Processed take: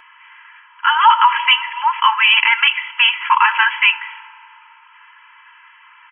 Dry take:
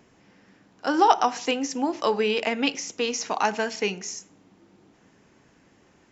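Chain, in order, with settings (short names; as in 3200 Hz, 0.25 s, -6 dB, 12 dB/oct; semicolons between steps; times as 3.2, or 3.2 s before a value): brick-wall FIR band-pass 850–3300 Hz; comb 3 ms, depth 96%; reverb RT60 3.1 s, pre-delay 3 ms, DRR 19.5 dB; maximiser +18 dB; gain -1 dB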